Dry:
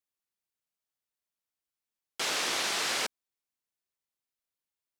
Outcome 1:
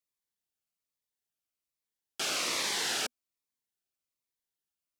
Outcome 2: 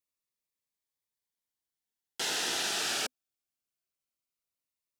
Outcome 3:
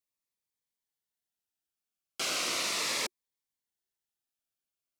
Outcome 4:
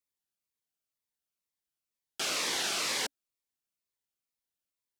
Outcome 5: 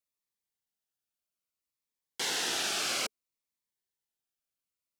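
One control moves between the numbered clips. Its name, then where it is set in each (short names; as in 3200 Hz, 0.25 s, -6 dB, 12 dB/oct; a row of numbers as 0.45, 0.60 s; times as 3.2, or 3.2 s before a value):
cascading phaser, rate: 1.2, 0.21, 0.37, 2.1, 0.61 Hz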